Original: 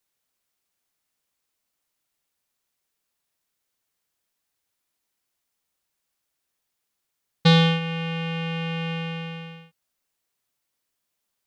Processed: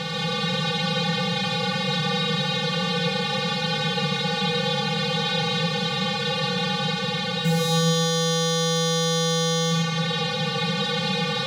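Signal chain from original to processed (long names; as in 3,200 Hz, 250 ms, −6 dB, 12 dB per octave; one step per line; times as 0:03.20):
compressor on every frequency bin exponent 0.2
low-shelf EQ 130 Hz −11.5 dB
in parallel at +2 dB: speech leveller within 3 dB 2 s
on the sum: hard clipping −14 dBFS, distortion −5 dB
convolution reverb RT60 2.1 s, pre-delay 40 ms, DRR −3.5 dB
level −5 dB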